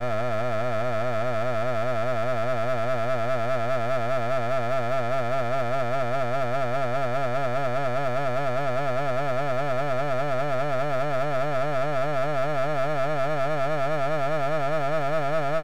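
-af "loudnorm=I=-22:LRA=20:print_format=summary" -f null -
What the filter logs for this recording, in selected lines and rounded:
Input Integrated:    -26.3 LUFS
Input True Peak:     -13.7 dBTP
Input LRA:             0.6 LU
Input Threshold:     -36.3 LUFS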